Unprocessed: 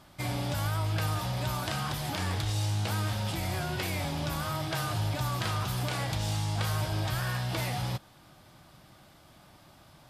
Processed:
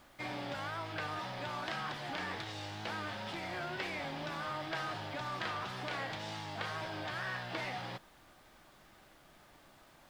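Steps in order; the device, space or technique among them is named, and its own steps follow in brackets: horn gramophone (BPF 250–3900 Hz; bell 1800 Hz +4.5 dB 0.51 oct; wow and flutter; pink noise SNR 24 dB); gain -4.5 dB

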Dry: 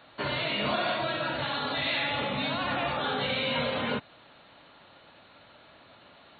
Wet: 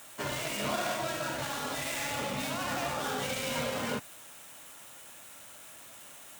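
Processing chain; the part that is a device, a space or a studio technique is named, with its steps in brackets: budget class-D amplifier (switching dead time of 0.12 ms; switching spikes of -33 dBFS); gain -3 dB

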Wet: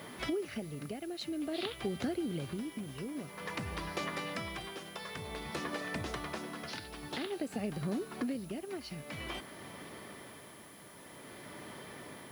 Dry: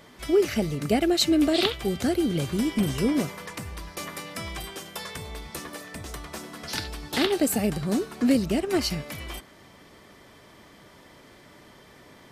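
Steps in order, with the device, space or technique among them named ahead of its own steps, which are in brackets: medium wave at night (BPF 100–4000 Hz; compressor, threshold -37 dBFS, peak gain reduction 19 dB; tremolo 0.51 Hz, depth 56%; whine 10000 Hz -63 dBFS; white noise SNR 22 dB); gain +4 dB

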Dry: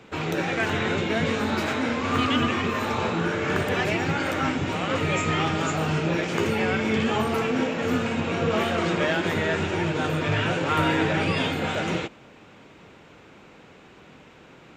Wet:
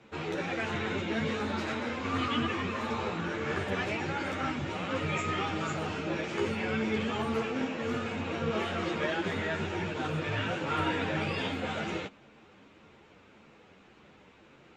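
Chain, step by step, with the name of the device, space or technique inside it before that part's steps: string-machine ensemble chorus (ensemble effect; LPF 7500 Hz 12 dB/oct); gain -4.5 dB

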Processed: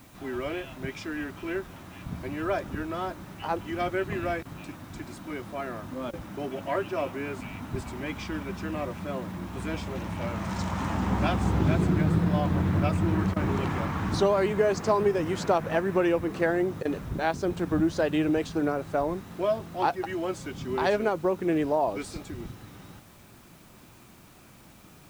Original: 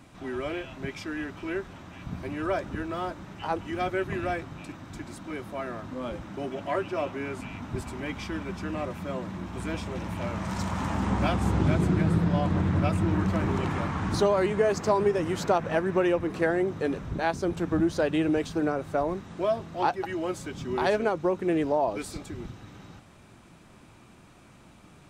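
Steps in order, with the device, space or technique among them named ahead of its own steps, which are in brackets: worn cassette (LPF 8700 Hz; wow and flutter; level dips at 4.43/6.11/13.34/16.83, 21 ms -18 dB; white noise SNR 31 dB)

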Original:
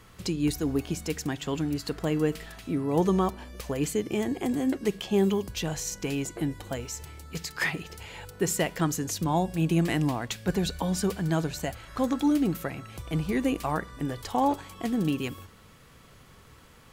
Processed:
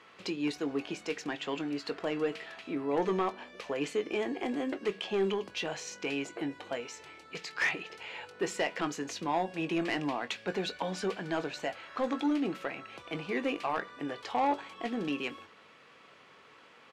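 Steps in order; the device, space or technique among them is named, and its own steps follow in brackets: intercom (BPF 370–3800 Hz; bell 2500 Hz +4 dB 0.42 oct; soft clip -22 dBFS, distortion -15 dB; doubler 21 ms -11.5 dB)

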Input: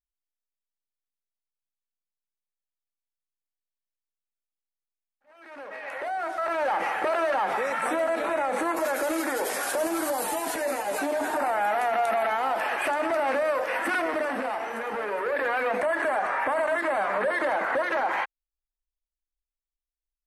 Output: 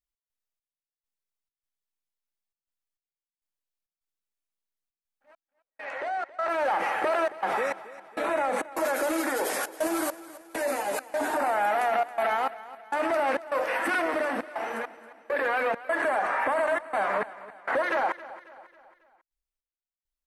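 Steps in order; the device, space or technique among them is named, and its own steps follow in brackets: 5.85–6.49 LPF 7700 Hz 24 dB/oct; trance gate with a delay (step gate "x.xx...xxx.xxxxx" 101 bpm -60 dB; feedback echo 0.273 s, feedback 47%, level -17 dB)

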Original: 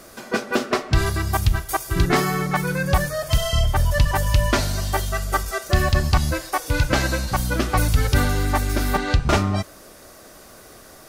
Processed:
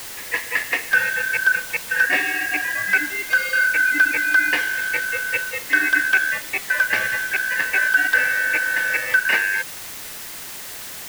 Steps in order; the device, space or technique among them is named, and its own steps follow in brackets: split-band scrambled radio (four-band scrambler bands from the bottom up 2143; BPF 320–3000 Hz; white noise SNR 13 dB)

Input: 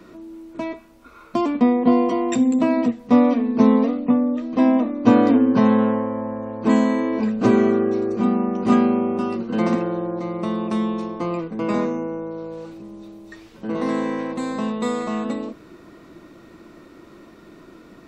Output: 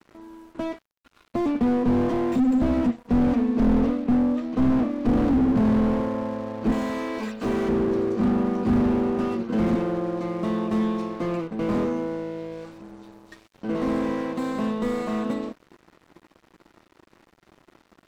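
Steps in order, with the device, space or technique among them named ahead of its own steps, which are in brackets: 6.72–7.69 tilt +4 dB/oct; early transistor amplifier (crossover distortion -42.5 dBFS; slew limiter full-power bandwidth 35 Hz)

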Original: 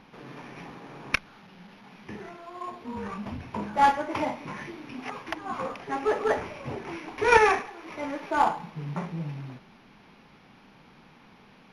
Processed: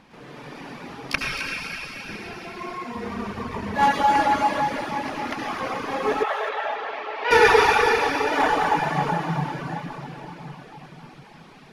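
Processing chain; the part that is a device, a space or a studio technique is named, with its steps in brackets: shimmer-style reverb (harmoniser +12 st -10 dB; reverb RT60 4.8 s, pre-delay 64 ms, DRR -7 dB); 6.23–7.31 Chebyshev band-pass 670–3200 Hz, order 2; reverb removal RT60 0.8 s; thin delay 0.261 s, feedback 30%, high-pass 2800 Hz, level -6 dB

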